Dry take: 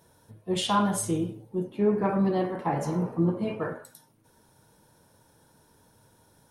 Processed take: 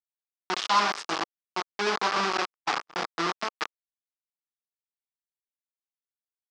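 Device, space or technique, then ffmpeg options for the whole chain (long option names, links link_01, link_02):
hand-held game console: -filter_complex "[0:a]acrusher=bits=3:mix=0:aa=0.000001,highpass=480,equalizer=frequency=550:width_type=q:width=4:gain=-8,equalizer=frequency=1200:width_type=q:width=4:gain=7,equalizer=frequency=5100:width_type=q:width=4:gain=5,lowpass=frequency=5700:width=0.5412,lowpass=frequency=5700:width=1.3066,asettb=1/sr,asplit=3[link_01][link_02][link_03];[link_01]atrim=end=2.374[link_04];[link_02]atrim=start=2.37:end=2.95,asetpts=PTS-STARTPTS,afade=type=in:duration=0.004:curve=qsin,afade=type=out:start_time=0.576:duration=0.004:curve=qsin,agate=range=-51dB:threshold=-27dB:ratio=16:detection=peak[link_05];[link_03]atrim=start=2.946[link_06];[link_04][link_05]acrossfade=duration=0.004:curve1=hsin:curve2=qsin[link_07];[link_07][link_06]acrossfade=duration=0.004:curve1=qsin:curve2=hsin"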